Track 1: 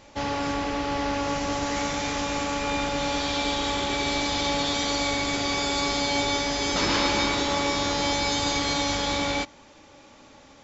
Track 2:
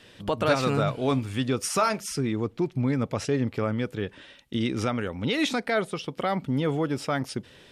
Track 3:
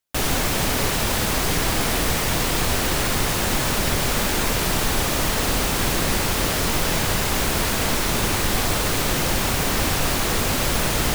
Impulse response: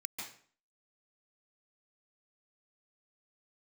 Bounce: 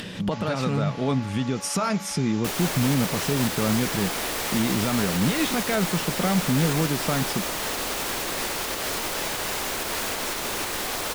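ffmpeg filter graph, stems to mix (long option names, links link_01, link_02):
-filter_complex "[0:a]highpass=640,acompressor=threshold=-33dB:ratio=6,adelay=150,volume=-4dB[link_01];[1:a]equalizer=frequency=180:width_type=o:width=0.6:gain=13.5,alimiter=limit=-18.5dB:level=0:latency=1:release=229,volume=3dB[link_02];[2:a]adelay=2300,volume=2dB[link_03];[link_01][link_03]amix=inputs=2:normalize=0,acrossover=split=280|3000[link_04][link_05][link_06];[link_04]acompressor=threshold=-41dB:ratio=2.5[link_07];[link_07][link_05][link_06]amix=inputs=3:normalize=0,alimiter=limit=-18.5dB:level=0:latency=1:release=471,volume=0dB[link_08];[link_02][link_08]amix=inputs=2:normalize=0,acompressor=mode=upward:threshold=-26dB:ratio=2.5"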